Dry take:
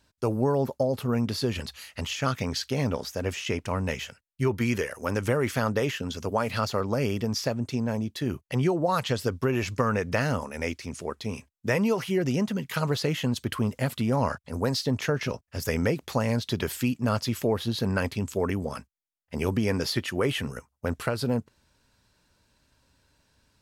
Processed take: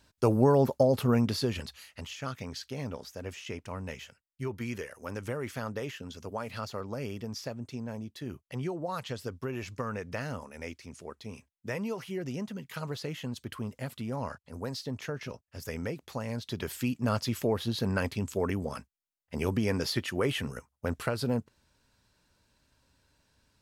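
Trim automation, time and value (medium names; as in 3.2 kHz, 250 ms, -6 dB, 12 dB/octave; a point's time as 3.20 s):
1.07 s +2 dB
2.10 s -10 dB
16.25 s -10 dB
17.03 s -3 dB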